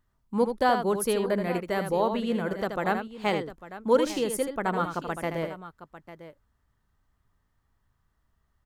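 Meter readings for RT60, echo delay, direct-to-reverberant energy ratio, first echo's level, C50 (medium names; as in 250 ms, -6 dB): no reverb, 79 ms, no reverb, -7.5 dB, no reverb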